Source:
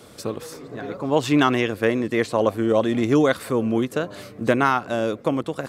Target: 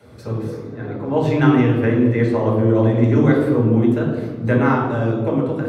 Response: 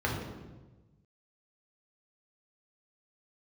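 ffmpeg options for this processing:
-filter_complex "[1:a]atrim=start_sample=2205[link_01];[0:a][link_01]afir=irnorm=-1:irlink=0,volume=-10dB"

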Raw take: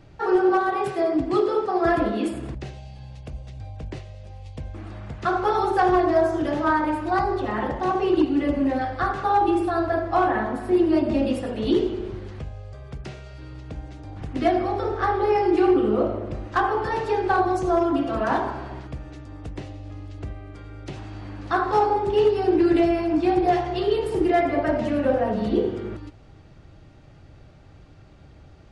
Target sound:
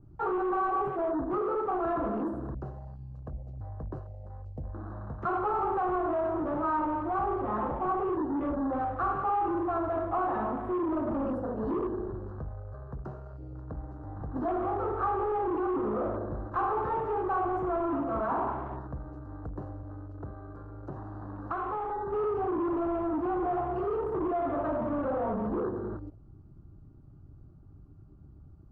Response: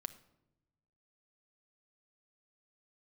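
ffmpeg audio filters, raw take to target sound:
-filter_complex "[0:a]asuperstop=centerf=3500:order=20:qfactor=7.2,alimiter=limit=-16dB:level=0:latency=1:release=15,asoftclip=type=tanh:threshold=-24.5dB,asettb=1/sr,asplit=3[link_01][link_02][link_03];[link_01]atrim=end=19.834[link_04];[link_02]atrim=start=19.83:end=22.12,asetpts=PTS-STARTPTS,afade=type=in:duration=0.004:curve=qsin,afade=type=out:start_time=2.286:duration=0.004:curve=qsin,acrossover=split=93|2500[link_05][link_06][link_07];[link_05]acompressor=threshold=-45dB:ratio=4[link_08];[link_06]acompressor=threshold=-31dB:ratio=4[link_09];[link_07]acompressor=threshold=-51dB:ratio=4[link_10];[link_08][link_09][link_10]amix=inputs=3:normalize=0[link_11];[link_03]atrim=start=22.116[link_12];[link_04][link_11]acrossfade=duration=0.004:curve1=hsin:curve2=qsin[link_13];[link_13][link_12]acrossfade=duration=0.004:curve1=qsin:curve2=hsin,highshelf=frequency=1600:width_type=q:width=3:gain=-8.5,afwtdn=0.00794,adynamicequalizer=threshold=0.0112:dfrequency=2100:dqfactor=0.7:tfrequency=2100:tqfactor=0.7:attack=5:release=100:ratio=0.375:range=2:mode=cutabove:tftype=highshelf,volume=-3dB"

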